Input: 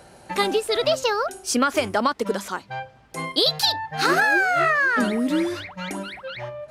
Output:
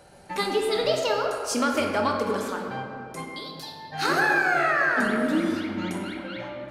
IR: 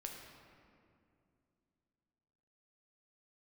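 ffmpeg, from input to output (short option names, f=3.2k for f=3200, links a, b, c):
-filter_complex "[0:a]asettb=1/sr,asplit=3[a][b][c];[a]atrim=end=3.234[d];[b]atrim=start=3.23:end=3.92,asetpts=PTS-STARTPTS,afade=t=in:d=0.004:c=qsin,afade=t=out:st=0.686:d=0.004:c=qsin,acompressor=threshold=-33dB:ratio=10[e];[c]atrim=start=3.916[f];[d][e]acrossfade=d=0.004:c1=hsin:c2=qsin[g];[g][f]acrossfade=d=0.004:c1=qsin:c2=hsin[h];[1:a]atrim=start_sample=2205[i];[h][i]afir=irnorm=-1:irlink=0"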